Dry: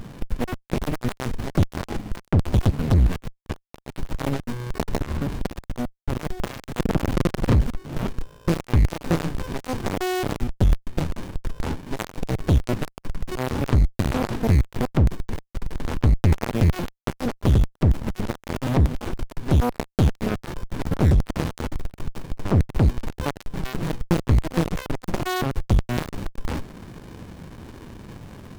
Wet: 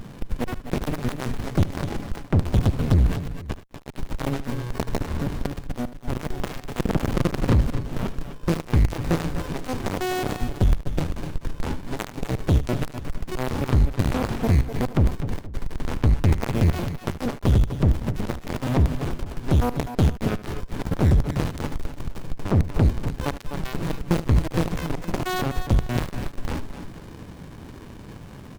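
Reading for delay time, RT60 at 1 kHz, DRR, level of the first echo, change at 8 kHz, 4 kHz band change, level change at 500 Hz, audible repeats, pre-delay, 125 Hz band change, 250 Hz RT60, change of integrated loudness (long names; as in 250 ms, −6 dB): 75 ms, no reverb audible, no reverb audible, −15.5 dB, −0.5 dB, −0.5 dB, −0.5 dB, 3, no reverb audible, −0.5 dB, no reverb audible, −0.5 dB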